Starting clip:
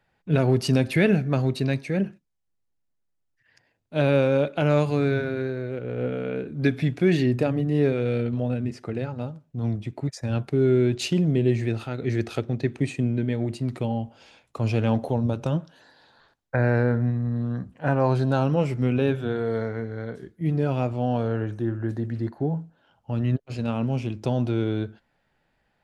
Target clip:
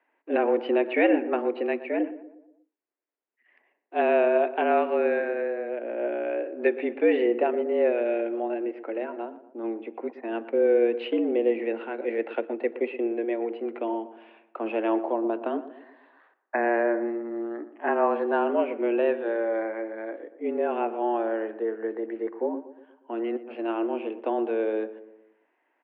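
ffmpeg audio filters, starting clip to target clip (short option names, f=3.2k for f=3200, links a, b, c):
-filter_complex "[0:a]highpass=f=190:t=q:w=0.5412,highpass=f=190:t=q:w=1.307,lowpass=f=2.6k:t=q:w=0.5176,lowpass=f=2.6k:t=q:w=0.7071,lowpass=f=2.6k:t=q:w=1.932,afreqshift=110,asplit=2[a][b];[b]adelay=119,lowpass=f=1.4k:p=1,volume=-13dB,asplit=2[c][d];[d]adelay=119,lowpass=f=1.4k:p=1,volume=0.5,asplit=2[e][f];[f]adelay=119,lowpass=f=1.4k:p=1,volume=0.5,asplit=2[g][h];[h]adelay=119,lowpass=f=1.4k:p=1,volume=0.5,asplit=2[i][j];[j]adelay=119,lowpass=f=1.4k:p=1,volume=0.5[k];[a][c][e][g][i][k]amix=inputs=6:normalize=0"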